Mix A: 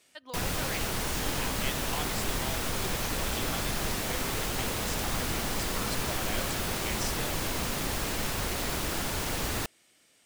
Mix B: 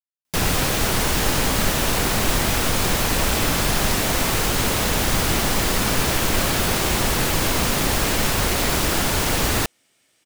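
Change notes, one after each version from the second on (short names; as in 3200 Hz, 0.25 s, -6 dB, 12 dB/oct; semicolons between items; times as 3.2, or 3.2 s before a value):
speech: entry +1.75 s; background +11.0 dB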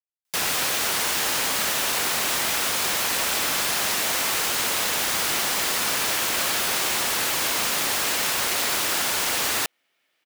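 speech: add air absorption 270 m; master: add HPF 1100 Hz 6 dB/oct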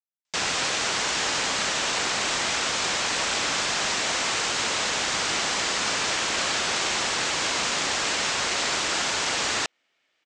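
master: add steep low-pass 7800 Hz 48 dB/oct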